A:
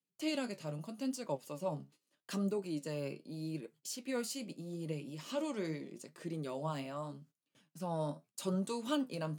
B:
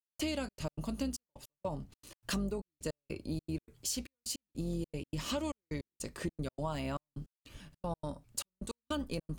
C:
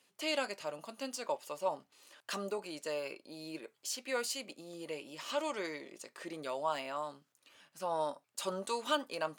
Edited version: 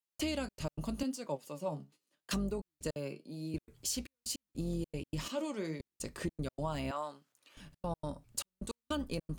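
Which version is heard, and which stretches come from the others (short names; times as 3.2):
B
1.03–2.31 from A
2.96–3.54 from A
5.28–5.8 from A
6.91–7.57 from C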